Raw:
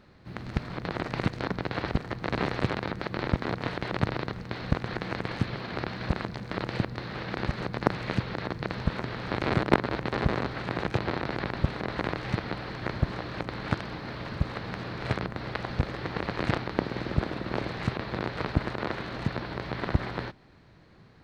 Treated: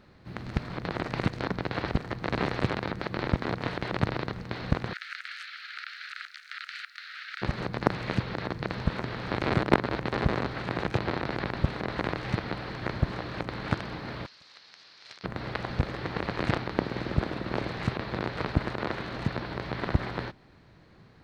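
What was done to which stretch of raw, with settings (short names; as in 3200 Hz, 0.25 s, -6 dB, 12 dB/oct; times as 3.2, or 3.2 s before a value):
4.93–7.42 steep high-pass 1300 Hz 96 dB/oct
14.26–15.24 band-pass 5300 Hz, Q 2.2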